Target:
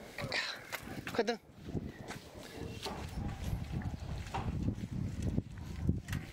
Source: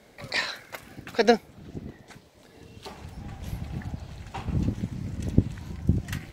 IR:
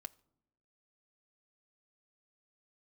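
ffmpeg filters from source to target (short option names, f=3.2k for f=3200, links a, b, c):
-filter_complex "[0:a]acompressor=threshold=-45dB:ratio=2.5,acrossover=split=1500[a][b];[a]aeval=exprs='val(0)*(1-0.5/2+0.5/2*cos(2*PI*3.4*n/s))':c=same[c];[b]aeval=exprs='val(0)*(1-0.5/2-0.5/2*cos(2*PI*3.4*n/s))':c=same[d];[c][d]amix=inputs=2:normalize=0,volume=7.5dB"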